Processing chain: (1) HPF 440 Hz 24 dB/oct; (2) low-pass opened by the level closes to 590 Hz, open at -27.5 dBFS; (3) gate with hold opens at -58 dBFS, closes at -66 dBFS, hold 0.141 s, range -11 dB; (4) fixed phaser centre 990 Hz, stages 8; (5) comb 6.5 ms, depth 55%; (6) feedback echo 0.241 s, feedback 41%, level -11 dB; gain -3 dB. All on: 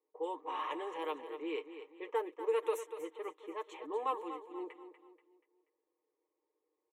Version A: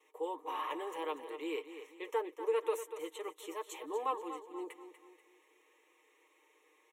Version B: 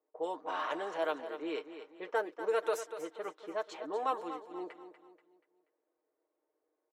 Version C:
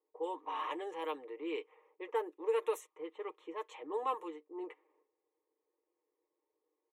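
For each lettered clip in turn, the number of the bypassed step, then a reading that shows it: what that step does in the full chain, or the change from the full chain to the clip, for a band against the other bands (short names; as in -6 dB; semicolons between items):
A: 2, 8 kHz band +5.5 dB; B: 4, 2 kHz band +5.0 dB; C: 6, echo-to-direct -10.0 dB to none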